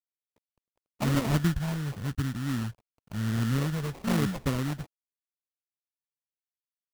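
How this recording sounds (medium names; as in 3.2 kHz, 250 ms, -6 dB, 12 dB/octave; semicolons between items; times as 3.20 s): a quantiser's noise floor 10-bit, dither none; phasing stages 6, 0.96 Hz, lowest notch 260–1000 Hz; aliases and images of a low sample rate 1.6 kHz, jitter 20%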